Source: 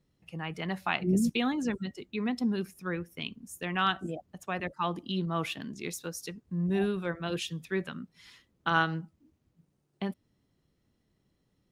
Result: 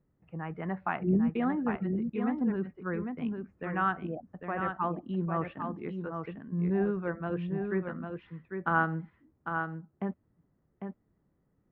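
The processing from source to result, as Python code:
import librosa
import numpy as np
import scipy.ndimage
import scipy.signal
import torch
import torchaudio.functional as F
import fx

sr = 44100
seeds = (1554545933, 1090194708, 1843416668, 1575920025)

p1 = scipy.signal.sosfilt(scipy.signal.butter(4, 1700.0, 'lowpass', fs=sr, output='sos'), x)
y = p1 + fx.echo_single(p1, sr, ms=800, db=-6.0, dry=0)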